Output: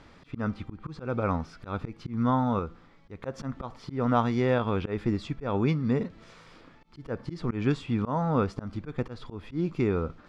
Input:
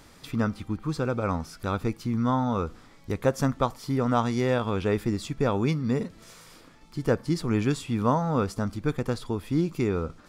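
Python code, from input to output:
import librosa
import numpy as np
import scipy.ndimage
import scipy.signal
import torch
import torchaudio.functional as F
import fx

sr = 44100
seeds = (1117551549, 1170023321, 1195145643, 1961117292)

y = scipy.signal.sosfilt(scipy.signal.butter(2, 3400.0, 'lowpass', fs=sr, output='sos'), x)
y = fx.auto_swell(y, sr, attack_ms=151.0)
y = fx.comb_fb(y, sr, f0_hz=170.0, decay_s=0.76, harmonics='all', damping=0.0, mix_pct=40, at=(2.59, 3.23))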